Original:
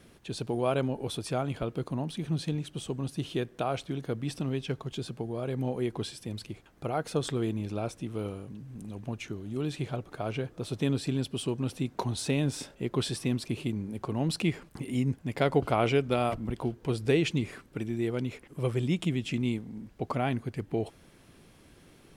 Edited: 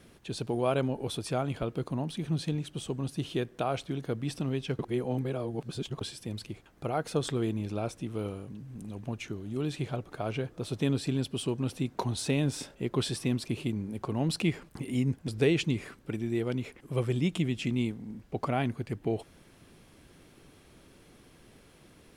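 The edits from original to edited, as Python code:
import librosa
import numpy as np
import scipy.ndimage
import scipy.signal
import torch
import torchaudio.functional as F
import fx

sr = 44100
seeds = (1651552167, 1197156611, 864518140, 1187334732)

y = fx.edit(x, sr, fx.reverse_span(start_s=4.79, length_s=1.22),
    fx.cut(start_s=15.28, length_s=1.67), tone=tone)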